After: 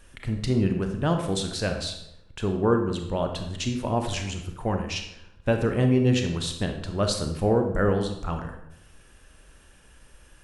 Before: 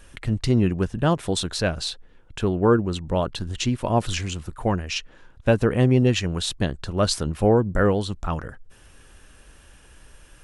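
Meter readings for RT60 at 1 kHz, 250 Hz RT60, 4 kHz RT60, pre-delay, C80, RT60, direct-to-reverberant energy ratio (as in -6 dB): 0.75 s, 0.95 s, 0.60 s, 27 ms, 9.5 dB, 0.80 s, 4.5 dB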